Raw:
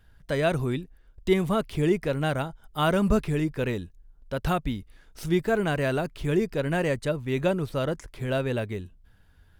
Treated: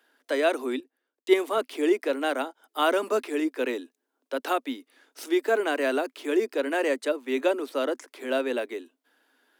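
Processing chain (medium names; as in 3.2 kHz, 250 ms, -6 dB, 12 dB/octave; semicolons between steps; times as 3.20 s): steep high-pass 250 Hz 96 dB/octave; 0.80–1.58 s: three bands expanded up and down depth 40%; trim +1.5 dB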